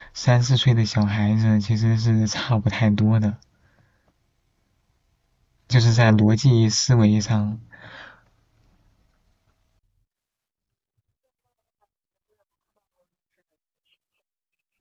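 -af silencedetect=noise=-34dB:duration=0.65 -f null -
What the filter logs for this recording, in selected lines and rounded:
silence_start: 3.35
silence_end: 5.70 | silence_duration: 2.35
silence_start: 8.08
silence_end: 14.81 | silence_duration: 6.73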